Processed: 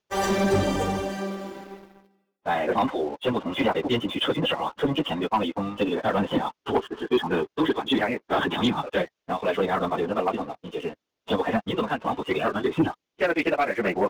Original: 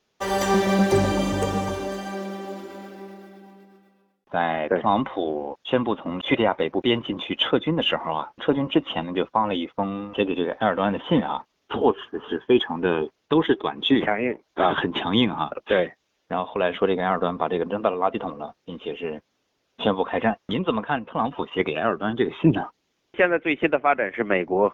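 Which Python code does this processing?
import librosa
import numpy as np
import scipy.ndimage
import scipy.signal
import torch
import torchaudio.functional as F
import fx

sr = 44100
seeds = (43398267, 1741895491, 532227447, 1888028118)

y = fx.stretch_vocoder_free(x, sr, factor=0.57)
y = fx.leveller(y, sr, passes=2)
y = y * librosa.db_to_amplitude(-4.5)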